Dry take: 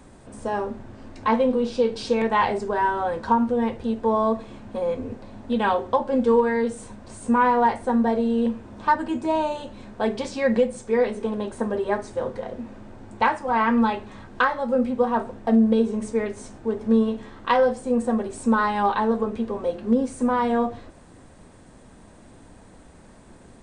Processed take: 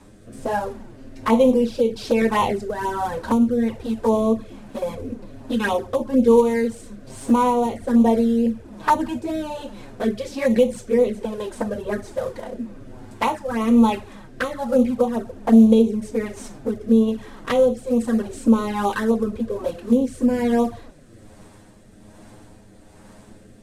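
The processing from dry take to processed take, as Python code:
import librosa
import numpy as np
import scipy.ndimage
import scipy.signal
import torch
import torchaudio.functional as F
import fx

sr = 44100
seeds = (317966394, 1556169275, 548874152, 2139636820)

y = fx.cvsd(x, sr, bps=64000)
y = fx.env_flanger(y, sr, rest_ms=11.1, full_db=-17.0)
y = fx.rotary(y, sr, hz=1.2)
y = F.gain(torch.from_numpy(y), 6.5).numpy()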